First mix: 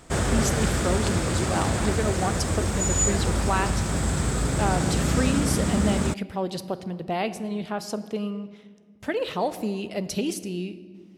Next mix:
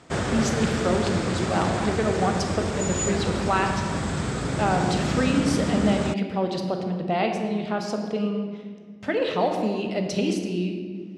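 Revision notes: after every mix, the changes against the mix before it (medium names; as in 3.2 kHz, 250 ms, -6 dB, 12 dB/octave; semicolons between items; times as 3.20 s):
speech: send +11.5 dB; master: add band-pass 100–5600 Hz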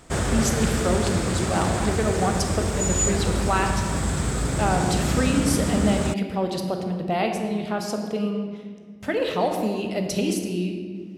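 master: remove band-pass 100–5600 Hz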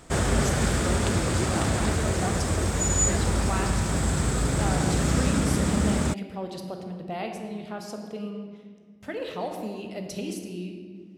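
speech -9.0 dB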